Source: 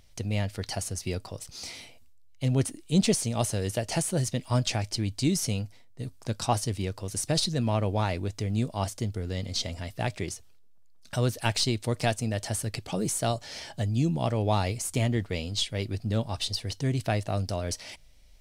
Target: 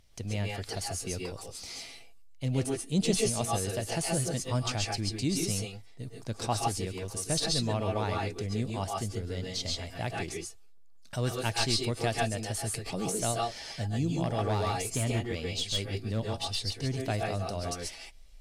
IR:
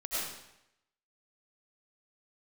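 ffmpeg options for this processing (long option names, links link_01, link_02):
-filter_complex "[1:a]atrim=start_sample=2205,afade=type=out:start_time=0.14:duration=0.01,atrim=end_sample=6615,asetrate=27342,aresample=44100[link_01];[0:a][link_01]afir=irnorm=-1:irlink=0,asettb=1/sr,asplit=3[link_02][link_03][link_04];[link_02]atrim=end=14.234[link_05];[link_03]atrim=start=14.23:end=16.56,asetpts=PTS-STARTPTS,afade=type=in:duration=0.004:curve=qsin,afade=type=out:start_time=2.326:duration=0.004:curve=qsin,volume=20.5dB,asoftclip=hard,volume=-20.5dB[link_06];[link_04]atrim=start=16.556[link_07];[link_05][link_06]acrossfade=duration=0.004:curve1=hsin:curve2=qsin[link_08];[link_08][link_07]acrossfade=duration=0.004:curve1=qsin:curve2=hsin,volume=-2.5dB"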